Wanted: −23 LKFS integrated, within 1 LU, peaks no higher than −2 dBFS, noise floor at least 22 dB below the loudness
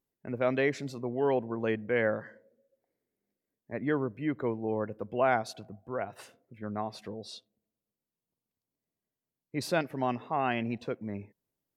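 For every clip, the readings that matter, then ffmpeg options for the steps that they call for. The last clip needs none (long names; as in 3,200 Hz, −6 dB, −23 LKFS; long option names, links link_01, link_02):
integrated loudness −32.5 LKFS; sample peak −13.0 dBFS; target loudness −23.0 LKFS
→ -af "volume=9.5dB"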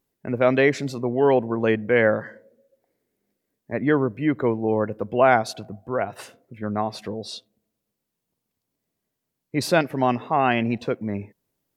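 integrated loudness −23.0 LKFS; sample peak −3.5 dBFS; background noise floor −82 dBFS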